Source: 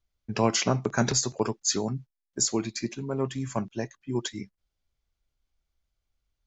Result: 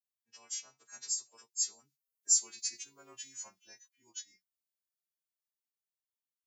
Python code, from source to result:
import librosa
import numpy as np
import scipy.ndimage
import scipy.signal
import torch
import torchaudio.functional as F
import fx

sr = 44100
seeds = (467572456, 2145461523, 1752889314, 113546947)

y = fx.freq_snap(x, sr, grid_st=2)
y = fx.doppler_pass(y, sr, speed_mps=15, closest_m=7.4, pass_at_s=2.92)
y = np.diff(y, prepend=0.0)
y = F.gain(torch.from_numpy(y), -4.0).numpy()